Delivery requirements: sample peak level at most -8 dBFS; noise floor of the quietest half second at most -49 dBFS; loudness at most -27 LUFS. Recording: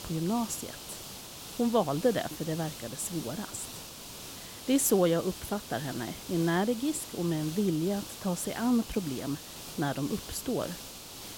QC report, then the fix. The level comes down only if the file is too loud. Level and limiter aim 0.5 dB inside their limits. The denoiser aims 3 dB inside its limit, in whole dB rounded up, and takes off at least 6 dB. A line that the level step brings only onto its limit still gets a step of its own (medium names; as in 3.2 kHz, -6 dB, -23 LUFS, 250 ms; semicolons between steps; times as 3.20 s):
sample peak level -14.0 dBFS: pass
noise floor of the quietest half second -44 dBFS: fail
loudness -31.5 LUFS: pass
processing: noise reduction 8 dB, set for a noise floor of -44 dBFS